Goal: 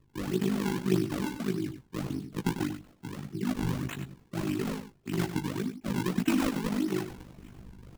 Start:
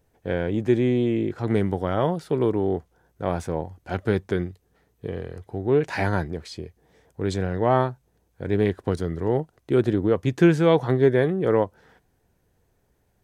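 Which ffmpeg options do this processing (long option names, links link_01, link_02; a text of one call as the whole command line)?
ffmpeg -i in.wav -filter_complex "[0:a]afftfilt=real='re*(1-between(b*sr/4096,240,1300))':imag='im*(1-between(b*sr/4096,240,1300))':win_size=4096:overlap=0.75,adynamicequalizer=threshold=0.00447:dfrequency=1500:dqfactor=1:tfrequency=1500:tqfactor=1:attack=5:release=100:ratio=0.375:range=2:mode=cutabove:tftype=bell,areverse,acompressor=mode=upward:threshold=-29dB:ratio=2.5,areverse,tremolo=f=30:d=0.947,flanger=delay=1.5:depth=7.4:regen=-62:speed=0.62:shape=sinusoidal,asetrate=73206,aresample=44100,acrossover=split=210[link_01][link_02];[link_02]acrusher=samples=41:mix=1:aa=0.000001:lfo=1:lforange=65.6:lforate=1.7[link_03];[link_01][link_03]amix=inputs=2:normalize=0,asplit=2[link_04][link_05];[link_05]adelay=16,volume=-5.5dB[link_06];[link_04][link_06]amix=inputs=2:normalize=0,aecho=1:1:96:0.299,volume=5.5dB" out.wav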